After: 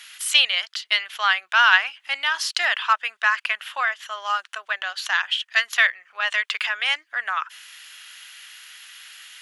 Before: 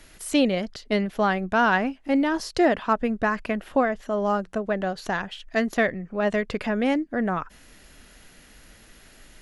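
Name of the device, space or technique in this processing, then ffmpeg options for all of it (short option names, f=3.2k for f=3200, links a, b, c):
headphones lying on a table: -af "highpass=f=1.2k:w=0.5412,highpass=f=1.2k:w=1.3066,equalizer=f=3.1k:t=o:w=0.59:g=8.5,volume=8dB"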